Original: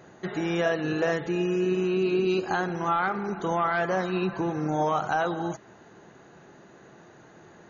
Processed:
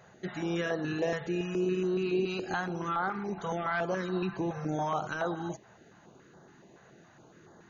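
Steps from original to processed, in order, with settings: stepped notch 7.1 Hz 310–2500 Hz; gain -3.5 dB

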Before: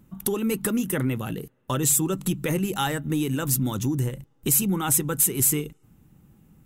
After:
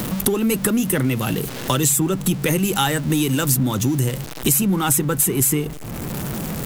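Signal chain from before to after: zero-crossing step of -36 dBFS; three-band squash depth 70%; gain +4.5 dB

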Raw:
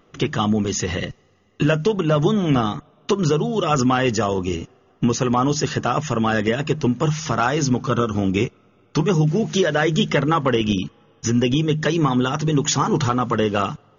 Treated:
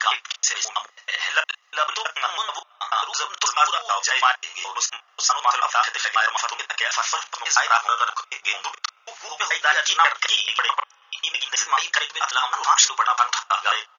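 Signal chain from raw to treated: slices in reverse order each 0.108 s, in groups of 4; inverse Chebyshev high-pass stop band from 280 Hz, stop band 60 dB; doubler 36 ms -11 dB; gain +6 dB

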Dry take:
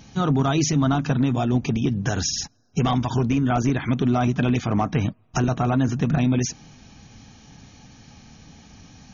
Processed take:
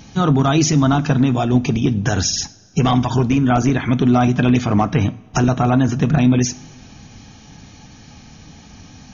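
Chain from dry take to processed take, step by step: two-slope reverb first 0.46 s, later 2.6 s, from -18 dB, DRR 14.5 dB; gain +5.5 dB

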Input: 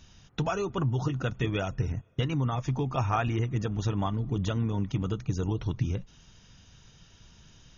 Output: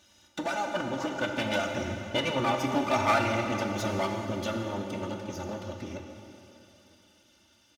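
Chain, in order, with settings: minimum comb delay 1.4 ms; Doppler pass-by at 2.68, 9 m/s, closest 11 m; HPF 190 Hz 12 dB/oct; comb 3.4 ms, depth 90%; in parallel at -8.5 dB: hard clip -30 dBFS, distortion -10 dB; on the sum: plate-style reverb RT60 3 s, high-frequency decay 0.95×, DRR 2.5 dB; gain +2 dB; MP3 112 kbps 48000 Hz

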